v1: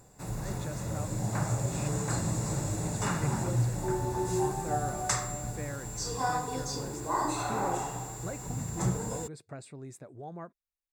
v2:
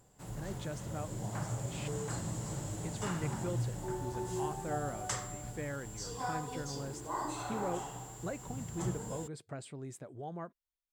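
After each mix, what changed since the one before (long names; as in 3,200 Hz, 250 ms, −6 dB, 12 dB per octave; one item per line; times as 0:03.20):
background −7.5 dB
master: remove Butterworth band-reject 3,100 Hz, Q 5.7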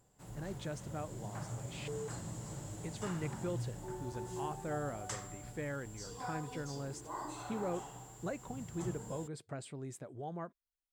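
background −5.5 dB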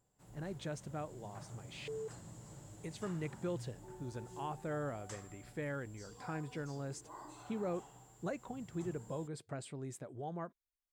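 background −8.5 dB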